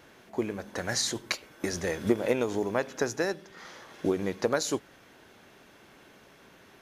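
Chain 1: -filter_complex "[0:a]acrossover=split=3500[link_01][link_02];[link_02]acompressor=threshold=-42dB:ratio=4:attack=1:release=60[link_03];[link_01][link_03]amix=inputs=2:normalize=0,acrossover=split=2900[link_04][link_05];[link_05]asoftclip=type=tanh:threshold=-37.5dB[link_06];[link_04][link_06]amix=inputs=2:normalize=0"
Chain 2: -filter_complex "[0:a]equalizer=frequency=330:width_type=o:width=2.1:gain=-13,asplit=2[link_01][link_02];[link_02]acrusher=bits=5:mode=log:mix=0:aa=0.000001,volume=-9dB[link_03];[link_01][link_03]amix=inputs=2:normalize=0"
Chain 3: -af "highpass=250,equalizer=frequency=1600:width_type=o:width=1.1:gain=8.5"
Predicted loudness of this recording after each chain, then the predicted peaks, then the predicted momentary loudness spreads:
−31.5, −33.0, −29.0 LKFS; −11.5, −12.0, −8.0 dBFS; 10, 15, 10 LU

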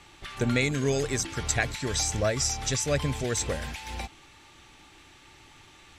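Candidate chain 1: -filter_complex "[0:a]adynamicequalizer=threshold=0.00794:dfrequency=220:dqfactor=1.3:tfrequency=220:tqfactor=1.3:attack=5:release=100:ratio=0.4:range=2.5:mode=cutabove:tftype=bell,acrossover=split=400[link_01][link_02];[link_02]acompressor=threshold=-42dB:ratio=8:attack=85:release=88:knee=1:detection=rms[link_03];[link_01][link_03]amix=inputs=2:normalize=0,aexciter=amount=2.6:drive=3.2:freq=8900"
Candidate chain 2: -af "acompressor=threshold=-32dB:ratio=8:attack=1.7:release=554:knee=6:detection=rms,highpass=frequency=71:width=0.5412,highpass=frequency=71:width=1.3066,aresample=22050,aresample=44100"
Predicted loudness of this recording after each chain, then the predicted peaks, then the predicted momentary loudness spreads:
−33.0, −40.0 LKFS; −14.0, −24.5 dBFS; 22, 14 LU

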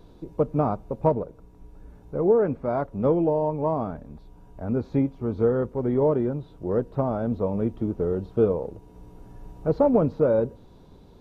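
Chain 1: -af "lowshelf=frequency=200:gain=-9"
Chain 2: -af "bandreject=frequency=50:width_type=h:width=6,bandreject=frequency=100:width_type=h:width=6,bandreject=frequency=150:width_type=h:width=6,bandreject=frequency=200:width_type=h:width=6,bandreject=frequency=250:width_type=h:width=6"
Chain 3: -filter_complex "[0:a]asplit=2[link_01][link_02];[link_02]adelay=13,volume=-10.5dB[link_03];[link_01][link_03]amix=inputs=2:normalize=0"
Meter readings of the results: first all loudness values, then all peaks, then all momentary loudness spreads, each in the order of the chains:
−27.0, −25.0, −24.5 LKFS; −9.5, −8.0, −7.0 dBFS; 11, 11, 10 LU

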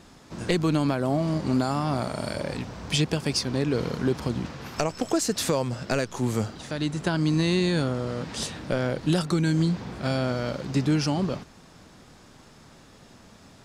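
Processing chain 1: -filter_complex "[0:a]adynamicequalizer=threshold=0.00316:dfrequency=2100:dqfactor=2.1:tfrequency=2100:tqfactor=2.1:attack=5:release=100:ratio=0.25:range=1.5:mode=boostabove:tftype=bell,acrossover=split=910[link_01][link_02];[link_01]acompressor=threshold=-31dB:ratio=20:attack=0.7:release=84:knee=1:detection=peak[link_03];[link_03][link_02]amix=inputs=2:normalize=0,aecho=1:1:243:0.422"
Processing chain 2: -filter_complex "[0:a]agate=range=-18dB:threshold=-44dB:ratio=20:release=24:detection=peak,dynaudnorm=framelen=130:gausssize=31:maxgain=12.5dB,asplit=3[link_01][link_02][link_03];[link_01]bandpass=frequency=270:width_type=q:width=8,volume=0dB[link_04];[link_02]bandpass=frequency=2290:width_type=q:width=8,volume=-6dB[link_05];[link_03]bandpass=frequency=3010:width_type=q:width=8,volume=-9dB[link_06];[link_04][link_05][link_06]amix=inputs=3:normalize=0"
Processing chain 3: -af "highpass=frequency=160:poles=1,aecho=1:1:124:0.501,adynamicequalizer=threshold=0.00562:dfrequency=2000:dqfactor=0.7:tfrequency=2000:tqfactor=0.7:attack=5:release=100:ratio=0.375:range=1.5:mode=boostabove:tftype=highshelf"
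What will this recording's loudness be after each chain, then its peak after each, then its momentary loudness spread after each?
−31.5, −28.0, −26.5 LKFS; −10.5, −10.0, −8.0 dBFS; 22, 12, 7 LU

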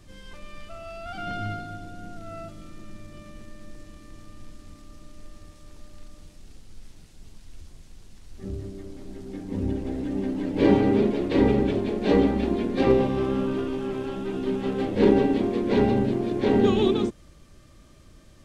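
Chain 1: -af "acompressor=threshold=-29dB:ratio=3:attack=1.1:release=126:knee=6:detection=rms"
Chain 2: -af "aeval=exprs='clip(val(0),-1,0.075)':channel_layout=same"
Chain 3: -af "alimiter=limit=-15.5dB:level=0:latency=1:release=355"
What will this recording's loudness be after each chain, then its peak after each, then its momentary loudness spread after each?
−34.0, −25.5, −28.0 LKFS; −20.5, −7.0, −15.5 dBFS; 20, 19, 20 LU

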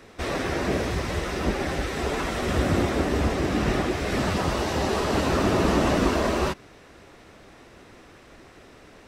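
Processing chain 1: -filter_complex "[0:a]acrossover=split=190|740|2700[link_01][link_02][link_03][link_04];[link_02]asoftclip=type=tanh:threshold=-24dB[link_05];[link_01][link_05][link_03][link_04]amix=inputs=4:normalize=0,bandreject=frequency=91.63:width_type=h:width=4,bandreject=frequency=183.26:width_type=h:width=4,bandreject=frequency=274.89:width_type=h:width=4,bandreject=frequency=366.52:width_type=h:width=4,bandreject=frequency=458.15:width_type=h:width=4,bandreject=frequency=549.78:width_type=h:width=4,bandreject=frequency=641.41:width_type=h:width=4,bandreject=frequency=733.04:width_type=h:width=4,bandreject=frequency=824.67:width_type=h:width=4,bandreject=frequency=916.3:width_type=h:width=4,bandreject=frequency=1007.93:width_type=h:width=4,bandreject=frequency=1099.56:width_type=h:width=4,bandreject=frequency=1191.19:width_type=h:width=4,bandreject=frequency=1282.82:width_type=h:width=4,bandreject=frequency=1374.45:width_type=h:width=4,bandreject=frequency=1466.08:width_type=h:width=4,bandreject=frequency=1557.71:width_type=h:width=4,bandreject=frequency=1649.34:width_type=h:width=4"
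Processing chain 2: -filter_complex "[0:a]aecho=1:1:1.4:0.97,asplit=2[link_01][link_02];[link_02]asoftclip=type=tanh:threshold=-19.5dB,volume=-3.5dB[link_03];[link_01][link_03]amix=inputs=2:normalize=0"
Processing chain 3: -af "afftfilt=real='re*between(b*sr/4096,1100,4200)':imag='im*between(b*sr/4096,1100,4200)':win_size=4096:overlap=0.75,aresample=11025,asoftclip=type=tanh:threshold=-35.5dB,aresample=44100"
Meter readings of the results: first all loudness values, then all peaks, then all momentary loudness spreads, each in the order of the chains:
−26.5, −19.5, −37.5 LKFS; −11.5, −5.5, −32.0 dBFS; 5, 5, 17 LU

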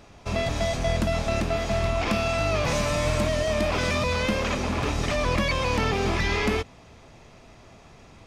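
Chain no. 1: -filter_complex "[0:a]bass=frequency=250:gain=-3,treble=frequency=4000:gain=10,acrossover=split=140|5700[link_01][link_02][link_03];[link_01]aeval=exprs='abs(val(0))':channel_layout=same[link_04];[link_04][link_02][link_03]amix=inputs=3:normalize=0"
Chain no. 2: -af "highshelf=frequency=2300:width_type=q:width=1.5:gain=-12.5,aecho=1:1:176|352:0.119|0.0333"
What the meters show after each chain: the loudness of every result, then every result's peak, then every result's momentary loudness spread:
−24.5, −25.5 LKFS; −9.5, −12.0 dBFS; 3, 2 LU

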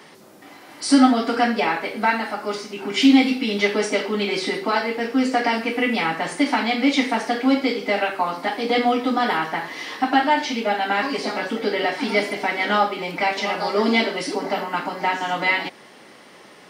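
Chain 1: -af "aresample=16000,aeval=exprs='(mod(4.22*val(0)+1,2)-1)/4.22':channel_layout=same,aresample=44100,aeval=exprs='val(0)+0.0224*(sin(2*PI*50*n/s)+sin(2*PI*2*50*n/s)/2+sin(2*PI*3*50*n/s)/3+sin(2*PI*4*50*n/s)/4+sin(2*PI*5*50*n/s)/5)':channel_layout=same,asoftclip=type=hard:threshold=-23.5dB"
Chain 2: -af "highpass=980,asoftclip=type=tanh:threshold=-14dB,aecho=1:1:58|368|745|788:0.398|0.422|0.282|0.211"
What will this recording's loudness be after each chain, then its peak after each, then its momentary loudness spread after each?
−26.0, −24.5 LKFS; −23.5, −12.0 dBFS; 4, 5 LU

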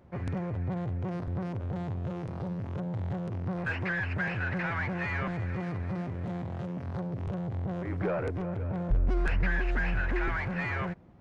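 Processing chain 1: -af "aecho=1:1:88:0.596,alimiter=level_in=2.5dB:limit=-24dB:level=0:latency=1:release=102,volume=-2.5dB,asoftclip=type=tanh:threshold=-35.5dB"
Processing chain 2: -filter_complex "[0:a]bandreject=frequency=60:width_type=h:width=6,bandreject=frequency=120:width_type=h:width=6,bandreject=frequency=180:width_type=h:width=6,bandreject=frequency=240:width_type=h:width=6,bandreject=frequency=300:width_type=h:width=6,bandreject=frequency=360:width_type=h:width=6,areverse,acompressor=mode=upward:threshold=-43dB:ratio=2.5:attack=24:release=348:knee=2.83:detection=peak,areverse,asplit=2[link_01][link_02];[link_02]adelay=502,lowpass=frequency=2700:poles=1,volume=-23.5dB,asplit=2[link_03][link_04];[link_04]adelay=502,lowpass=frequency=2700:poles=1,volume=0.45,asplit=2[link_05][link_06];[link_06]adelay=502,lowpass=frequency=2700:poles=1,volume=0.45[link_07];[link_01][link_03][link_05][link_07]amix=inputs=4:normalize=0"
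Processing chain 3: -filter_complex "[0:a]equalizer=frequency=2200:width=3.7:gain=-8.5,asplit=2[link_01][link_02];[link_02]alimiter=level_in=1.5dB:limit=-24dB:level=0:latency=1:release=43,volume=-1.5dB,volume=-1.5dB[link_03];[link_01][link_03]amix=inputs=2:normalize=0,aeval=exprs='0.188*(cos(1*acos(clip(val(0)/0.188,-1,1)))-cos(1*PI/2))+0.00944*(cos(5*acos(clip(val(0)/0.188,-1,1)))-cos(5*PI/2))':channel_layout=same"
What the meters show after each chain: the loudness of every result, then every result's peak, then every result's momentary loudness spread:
−40.0, −33.5, −27.5 LKFS; −35.5, −17.5, −14.5 dBFS; 2, 7, 3 LU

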